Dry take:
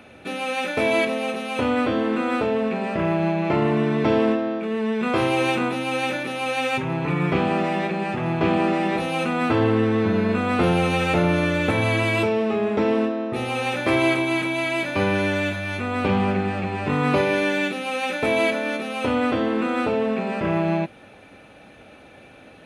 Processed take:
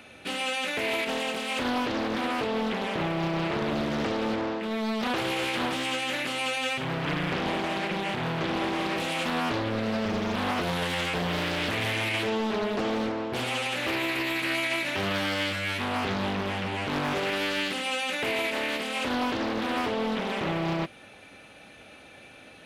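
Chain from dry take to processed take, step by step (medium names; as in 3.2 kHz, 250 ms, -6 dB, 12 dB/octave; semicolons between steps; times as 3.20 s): treble shelf 2 kHz +11 dB; peak limiter -14 dBFS, peak gain reduction 8.5 dB; loudspeaker Doppler distortion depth 0.82 ms; trim -5.5 dB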